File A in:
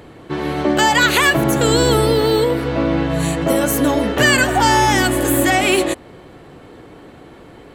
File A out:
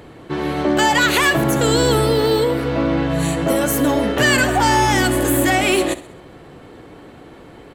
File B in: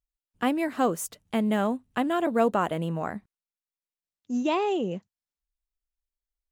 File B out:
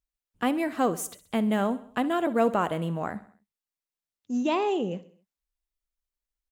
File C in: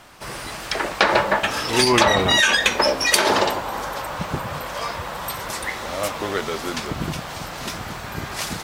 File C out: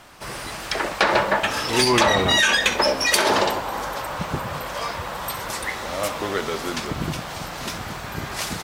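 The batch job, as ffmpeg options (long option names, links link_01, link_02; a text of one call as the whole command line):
ffmpeg -i in.wav -af "aecho=1:1:65|130|195|260:0.141|0.0706|0.0353|0.0177,acontrast=44,volume=-6dB" out.wav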